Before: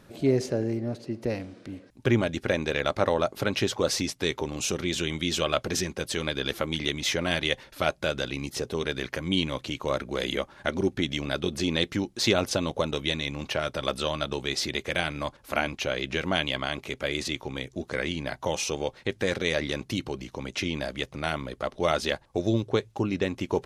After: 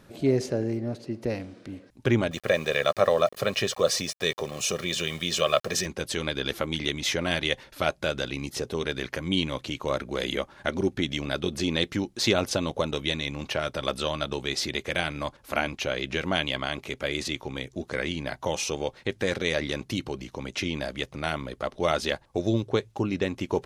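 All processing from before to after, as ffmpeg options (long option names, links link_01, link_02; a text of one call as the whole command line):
ffmpeg -i in.wav -filter_complex "[0:a]asettb=1/sr,asplit=3[link_01][link_02][link_03];[link_01]atrim=end=2.314[link_04];[link_02]atrim=start=2.31:end=5.86,asetpts=PTS-STARTPTS,afade=type=in:duration=0.004:curve=qsin,afade=type=out:start_time=3.546:duration=0.004:curve=qsin,highpass=150,aeval=exprs='val(0)*gte(abs(val(0)),0.0075)':channel_layout=same,aecho=1:1:1.7:0.65,atrim=end_sample=156555[link_05];[link_03]atrim=start=5.856[link_06];[link_04][link_05]acrossfade=duration=0.004:curve1=hsin:curve2=qsin[link_07];[link_07][link_06]acrossfade=duration=0.004:curve1=qsin:curve2=hsin" out.wav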